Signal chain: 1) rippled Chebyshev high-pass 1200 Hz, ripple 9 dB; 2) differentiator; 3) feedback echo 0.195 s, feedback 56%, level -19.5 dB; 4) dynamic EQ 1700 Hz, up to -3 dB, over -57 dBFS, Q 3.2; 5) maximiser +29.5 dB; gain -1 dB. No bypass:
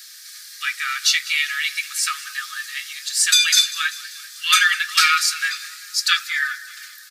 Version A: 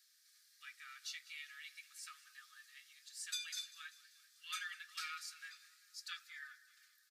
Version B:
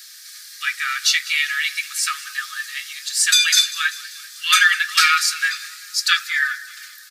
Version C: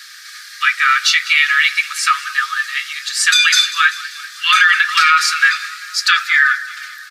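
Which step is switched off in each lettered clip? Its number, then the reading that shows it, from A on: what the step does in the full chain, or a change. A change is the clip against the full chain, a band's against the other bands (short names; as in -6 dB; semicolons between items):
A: 5, crest factor change +4.0 dB; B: 4, 2 kHz band +2.0 dB; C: 2, 8 kHz band -9.5 dB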